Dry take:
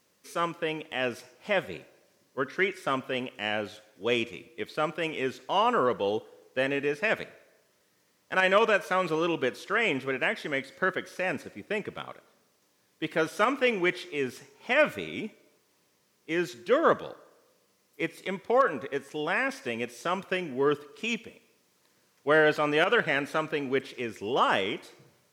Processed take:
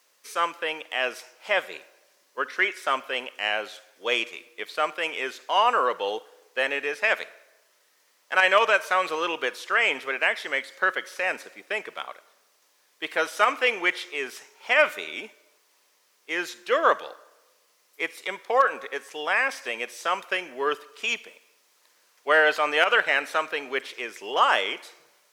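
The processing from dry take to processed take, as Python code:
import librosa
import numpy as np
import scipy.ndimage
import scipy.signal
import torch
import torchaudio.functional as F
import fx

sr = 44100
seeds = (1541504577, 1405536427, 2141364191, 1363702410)

y = scipy.signal.sosfilt(scipy.signal.butter(2, 660.0, 'highpass', fs=sr, output='sos'), x)
y = y * librosa.db_to_amplitude(5.5)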